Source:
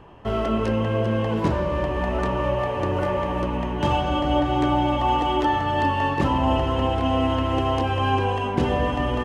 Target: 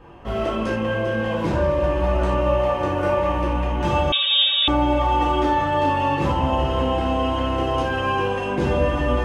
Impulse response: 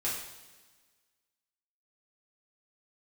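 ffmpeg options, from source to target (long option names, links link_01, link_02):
-filter_complex "[0:a]asplit=2[link_01][link_02];[link_02]alimiter=limit=-16dB:level=0:latency=1,volume=1dB[link_03];[link_01][link_03]amix=inputs=2:normalize=0[link_04];[1:a]atrim=start_sample=2205,atrim=end_sample=4410[link_05];[link_04][link_05]afir=irnorm=-1:irlink=0,asettb=1/sr,asplit=3[link_06][link_07][link_08];[link_06]atrim=end=4.124[link_09];[link_07]atrim=start=4.12:end=4.68,asetpts=PTS-STARTPTS,afade=type=in:duration=0.004:curve=qsin,afade=type=out:start_time=0.556:duration=0.004:curve=qsin,lowpass=frequency=3200:width_type=q:width=0.5098,lowpass=frequency=3200:width_type=q:width=0.6013,lowpass=frequency=3200:width_type=q:width=0.9,lowpass=frequency=3200:width_type=q:width=2.563,afreqshift=-3800[link_10];[link_08]atrim=start=4.676[link_11];[link_09][link_10]acrossfade=duration=0.004:curve1=hsin:curve2=qsin[link_12];[link_12][link_11]acrossfade=duration=0.004:curve1=qsin:curve2=hsin,volume=-8dB"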